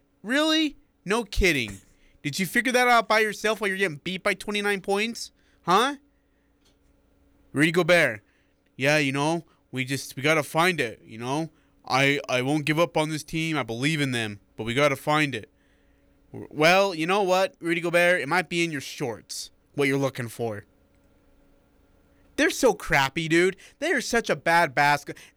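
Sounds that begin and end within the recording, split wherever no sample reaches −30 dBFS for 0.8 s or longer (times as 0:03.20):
0:07.55–0:15.43
0:16.35–0:20.59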